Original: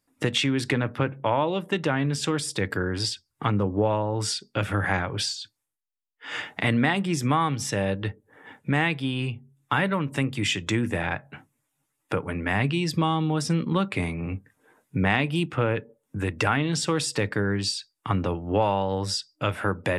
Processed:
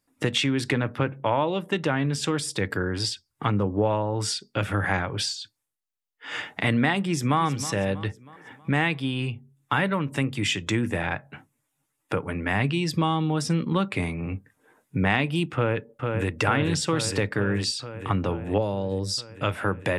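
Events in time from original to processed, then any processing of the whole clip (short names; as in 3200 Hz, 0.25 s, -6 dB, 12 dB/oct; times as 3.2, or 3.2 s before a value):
7–7.4 echo throw 0.32 s, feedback 50%, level -14 dB
15.54–16.36 echo throw 0.45 s, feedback 75%, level -4 dB
18.58–19.18 band shelf 1500 Hz -12 dB 2.4 oct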